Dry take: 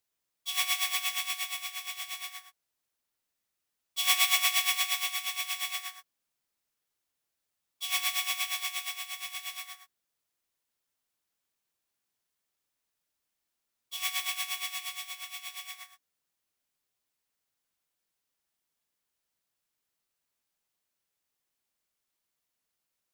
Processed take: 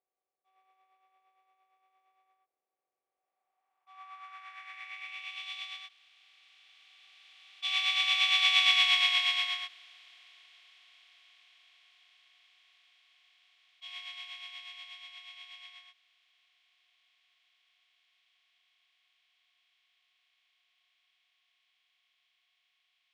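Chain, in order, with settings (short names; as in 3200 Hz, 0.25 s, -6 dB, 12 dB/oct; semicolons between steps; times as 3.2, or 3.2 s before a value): per-bin compression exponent 0.4; Doppler pass-by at 8.79, 8 m/s, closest 3.1 m; low-pass sweep 510 Hz -> 3300 Hz, 3.06–5.51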